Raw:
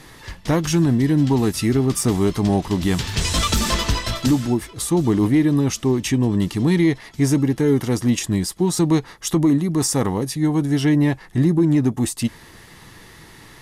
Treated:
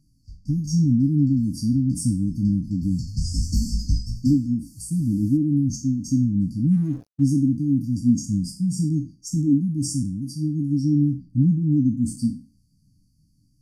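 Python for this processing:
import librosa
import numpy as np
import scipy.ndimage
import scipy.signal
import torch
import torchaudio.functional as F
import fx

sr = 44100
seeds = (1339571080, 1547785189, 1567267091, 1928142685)

y = fx.spec_trails(x, sr, decay_s=0.54)
y = fx.dmg_noise_band(y, sr, seeds[0], low_hz=980.0, high_hz=13000.0, level_db=-35.0, at=(4.64, 5.36), fade=0.02)
y = fx.brickwall_bandstop(y, sr, low_hz=310.0, high_hz=4400.0)
y = fx.sample_gate(y, sr, floor_db=-28.0, at=(6.71, 7.24))
y = fx.spectral_expand(y, sr, expansion=1.5)
y = F.gain(torch.from_numpy(y), -1.5).numpy()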